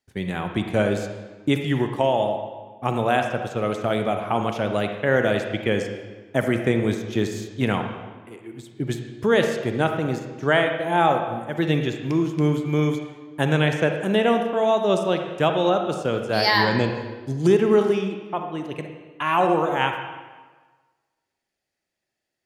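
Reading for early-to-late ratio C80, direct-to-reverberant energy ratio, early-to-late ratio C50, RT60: 7.5 dB, 5.0 dB, 5.5 dB, 1.4 s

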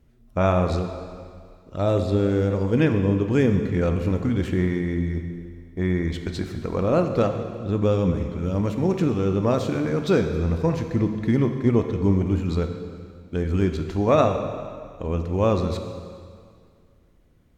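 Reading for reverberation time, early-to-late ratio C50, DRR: 2.1 s, 7.0 dB, 5.5 dB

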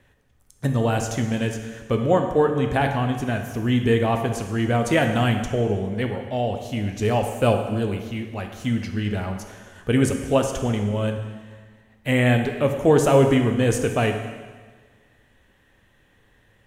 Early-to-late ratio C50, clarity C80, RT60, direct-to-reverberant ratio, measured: 6.5 dB, 8.5 dB, 1.5 s, 4.5 dB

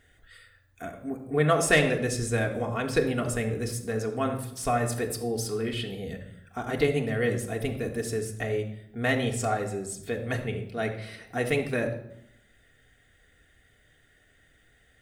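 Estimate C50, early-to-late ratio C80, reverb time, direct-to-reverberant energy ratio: 9.0 dB, 12.0 dB, 0.80 s, 1.0 dB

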